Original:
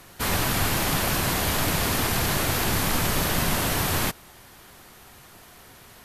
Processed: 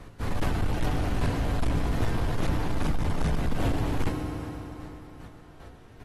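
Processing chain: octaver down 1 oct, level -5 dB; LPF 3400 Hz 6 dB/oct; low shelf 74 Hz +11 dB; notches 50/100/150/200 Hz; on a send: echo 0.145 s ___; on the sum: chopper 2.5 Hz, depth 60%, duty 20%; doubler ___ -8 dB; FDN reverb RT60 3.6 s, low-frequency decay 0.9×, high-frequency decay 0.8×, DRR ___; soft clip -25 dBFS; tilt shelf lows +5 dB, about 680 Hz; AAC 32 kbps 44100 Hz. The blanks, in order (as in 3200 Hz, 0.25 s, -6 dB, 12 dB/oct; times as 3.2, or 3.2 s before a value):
-20.5 dB, 19 ms, 5.5 dB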